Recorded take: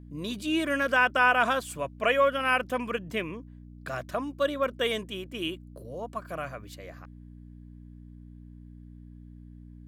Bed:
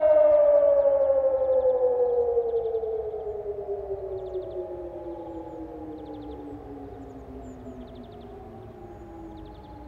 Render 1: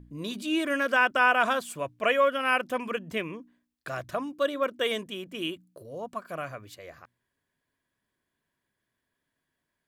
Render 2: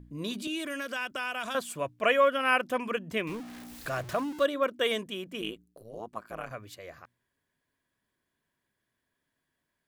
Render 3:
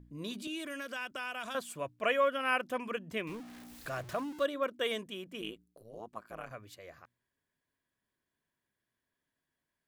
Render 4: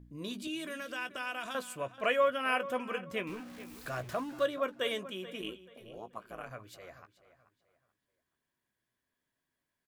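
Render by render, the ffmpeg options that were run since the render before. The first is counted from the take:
-af "bandreject=f=60:t=h:w=4,bandreject=f=120:t=h:w=4,bandreject=f=180:t=h:w=4,bandreject=f=240:t=h:w=4,bandreject=f=300:t=h:w=4"
-filter_complex "[0:a]asettb=1/sr,asplit=3[a][b][c];[a]atrim=end=0.474[d];[b]atrim=start=0.47:end=1.55,asetpts=PTS-STARTPTS,afade=t=in:d=0.004:c=qsin,afade=t=out:st=1.076:d=0.004:c=qsin,acrossover=split=150|3000[e][f][g];[f]acompressor=threshold=-35dB:ratio=4:attack=3.2:release=140:knee=2.83:detection=peak[h];[e][h][g]amix=inputs=3:normalize=0[i];[c]atrim=start=1.546[j];[d][i]acrossfade=d=0.004:c1=hsin:c2=qsin[k];[k][j]acrossfade=d=0.004:c1=qsin:c2=hsin,asettb=1/sr,asplit=3[l][m][n];[l]atrim=end=3.274[o];[m]atrim=start=3.27:end=4.46,asetpts=PTS-STARTPTS,afade=t=in:d=0.004:c=qsin,afade=t=out:st=1.186:d=0.004:c=qsin,aeval=exprs='val(0)+0.5*0.0112*sgn(val(0))':c=same[p];[n]atrim=start=4.456[q];[o][p]acrossfade=d=0.004:c1=hsin:c2=qsin[r];[r][q]acrossfade=d=0.004:c1=qsin:c2=hsin,asettb=1/sr,asplit=3[s][t][u];[s]atrim=end=5.414[v];[t]atrim=start=5.41:end=6.51,asetpts=PTS-STARTPTS,afade=t=in:d=0.004:c=qsin,afade=t=out:st=1.096:d=0.004:c=qsin,tremolo=f=110:d=0.947[w];[u]atrim=start=6.506[x];[v][w]acrossfade=d=0.004:c1=hsin:c2=qsin[y];[y][x]acrossfade=d=0.004:c1=qsin:c2=hsin"
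-af "volume=-5.5dB"
-filter_complex "[0:a]asplit=2[a][b];[b]adelay=16,volume=-10.5dB[c];[a][c]amix=inputs=2:normalize=0,asplit=2[d][e];[e]adelay=432,lowpass=f=4.8k:p=1,volume=-15dB,asplit=2[f][g];[g]adelay=432,lowpass=f=4.8k:p=1,volume=0.31,asplit=2[h][i];[i]adelay=432,lowpass=f=4.8k:p=1,volume=0.31[j];[d][f][h][j]amix=inputs=4:normalize=0"

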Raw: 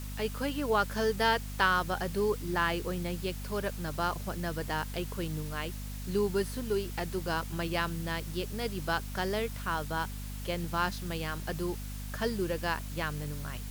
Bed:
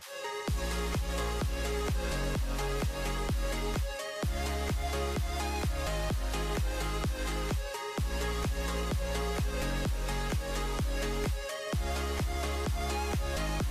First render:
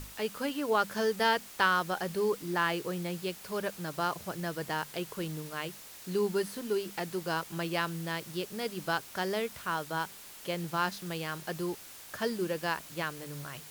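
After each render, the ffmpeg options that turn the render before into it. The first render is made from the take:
-af "bandreject=f=50:t=h:w=6,bandreject=f=100:t=h:w=6,bandreject=f=150:t=h:w=6,bandreject=f=200:t=h:w=6,bandreject=f=250:t=h:w=6"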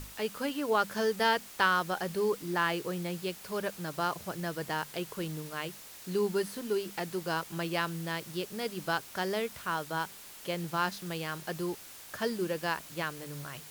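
-af anull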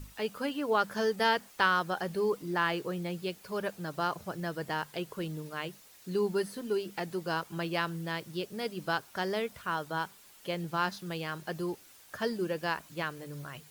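-af "afftdn=nr=9:nf=-49"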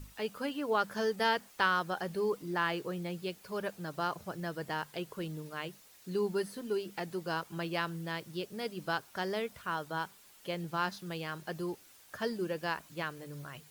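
-af "volume=-2.5dB"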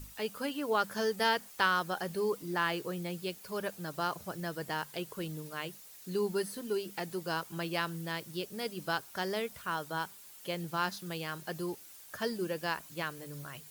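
-af "highshelf=f=5.7k:g=8.5"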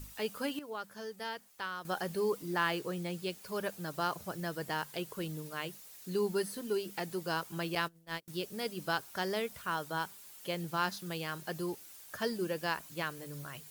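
-filter_complex "[0:a]asettb=1/sr,asplit=3[a][b][c];[a]atrim=end=2.794[d];[b]atrim=start=2.79:end=3.46,asetpts=PTS-STARTPTS,afade=t=in:d=0.004:c=qsin,afade=t=out:st=0.666:d=0.004:c=qsin,equalizer=f=14k:w=1.5:g=-5.5[e];[c]atrim=start=3.456[f];[d][e]acrossfade=d=0.004:c1=hsin:c2=qsin[g];[g][f]acrossfade=d=0.004:c1=qsin:c2=hsin,asettb=1/sr,asplit=3[h][i][j];[h]atrim=end=7.754[k];[i]atrim=start=7.75:end=8.28,asetpts=PTS-STARTPTS,afade=t=in:d=0.004:c=qsin,afade=t=out:st=0.526:d=0.004:c=qsin,agate=range=-31dB:threshold=-37dB:ratio=16:release=100:detection=peak[l];[j]atrim=start=8.276[m];[k][l]acrossfade=d=0.004:c1=hsin:c2=qsin[n];[n][m]acrossfade=d=0.004:c1=qsin:c2=hsin,asplit=3[o][p][q];[o]atrim=end=0.592[r];[p]atrim=start=0.588:end=1.852,asetpts=PTS-STARTPTS,volume=-11.5dB[s];[q]atrim=start=1.848[t];[r][s]acrossfade=d=0.004:c1=hsin:c2=hsin[u];[u][t]acrossfade=d=0.004:c1=hsin:c2=hsin"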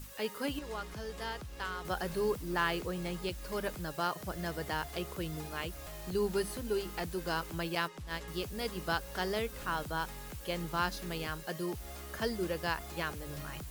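-filter_complex "[1:a]volume=-13.5dB[a];[0:a][a]amix=inputs=2:normalize=0"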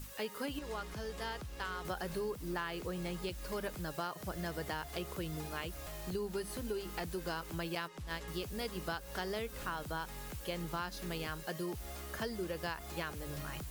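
-af "acompressor=threshold=-35dB:ratio=6"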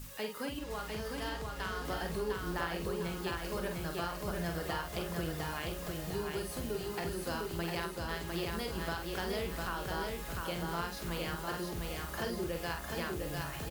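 -filter_complex "[0:a]asplit=2[a][b];[b]adelay=47,volume=-5.5dB[c];[a][c]amix=inputs=2:normalize=0,aecho=1:1:703|1406|2109|2812|3515|4218:0.668|0.294|0.129|0.0569|0.0251|0.011"

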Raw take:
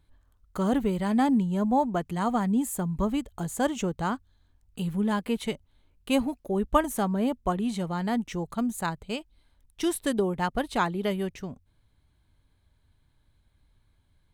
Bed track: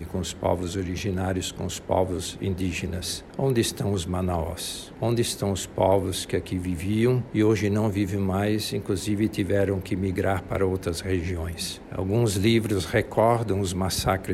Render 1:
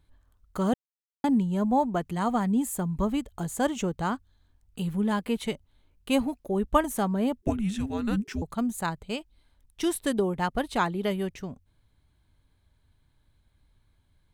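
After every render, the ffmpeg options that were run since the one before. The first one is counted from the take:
-filter_complex "[0:a]asettb=1/sr,asplit=3[a][b][c];[a]atrim=end=7.424[d];[b]atrim=start=7.42:end=8.42,asetpts=PTS-STARTPTS,afade=t=in:d=0.004:c=qsin,afade=t=out:st=0.996:d=0.004:c=qsin,afreqshift=-430[e];[c]atrim=start=8.416[f];[d][e]acrossfade=d=0.004:c1=hsin:c2=qsin[g];[g][f]acrossfade=d=0.004:c1=qsin:c2=hsin,asplit=3[h][i][j];[h]atrim=end=0.74,asetpts=PTS-STARTPTS,afade=t=out:st=0.736:d=0.004:c=hsin[k];[i]atrim=start=0.74:end=1.24,asetpts=PTS-STARTPTS,volume=0[l];[j]atrim=start=1.24,asetpts=PTS-STARTPTS,afade=t=in:d=0.004:c=hsin[m];[k][l][m]concat=n=3:v=0:a=1"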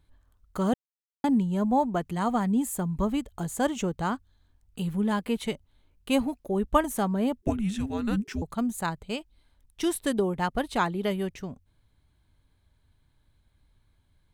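-af anull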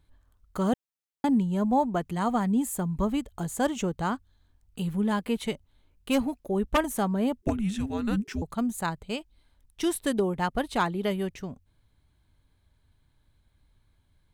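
-af "aeval=exprs='0.178*(abs(mod(val(0)/0.178+3,4)-2)-1)':c=same"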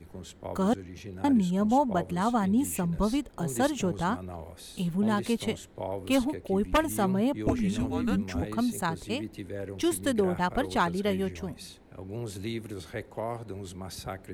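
-filter_complex "[1:a]volume=-14dB[a];[0:a][a]amix=inputs=2:normalize=0"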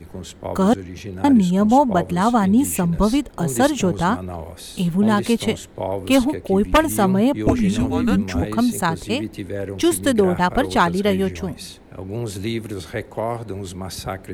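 -af "volume=9.5dB"

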